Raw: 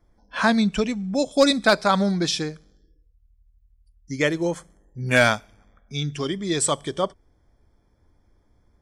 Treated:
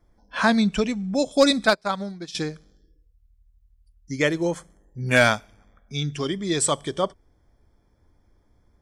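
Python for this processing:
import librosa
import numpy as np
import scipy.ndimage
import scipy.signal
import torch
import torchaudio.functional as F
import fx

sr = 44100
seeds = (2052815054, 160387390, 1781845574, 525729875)

y = fx.upward_expand(x, sr, threshold_db=-29.0, expansion=2.5, at=(1.66, 2.35))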